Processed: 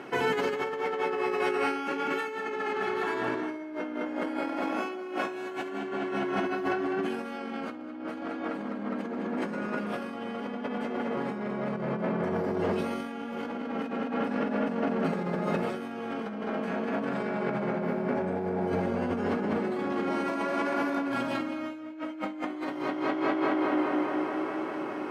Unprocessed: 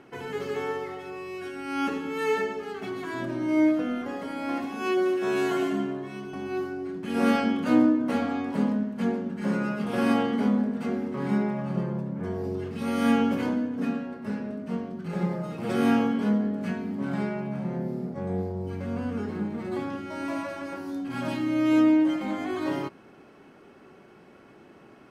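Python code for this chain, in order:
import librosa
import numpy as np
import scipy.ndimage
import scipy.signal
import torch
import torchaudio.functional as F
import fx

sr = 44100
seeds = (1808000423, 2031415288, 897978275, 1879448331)

y = fx.highpass(x, sr, hz=360.0, slope=6)
y = fx.high_shelf(y, sr, hz=4800.0, db=-6.0)
y = fx.echo_tape(y, sr, ms=204, feedback_pct=87, wet_db=-3.5, lp_hz=4900.0, drive_db=14.0, wow_cents=34)
y = fx.over_compress(y, sr, threshold_db=-37.0, ratio=-1.0)
y = y * 10.0 ** (5.0 / 20.0)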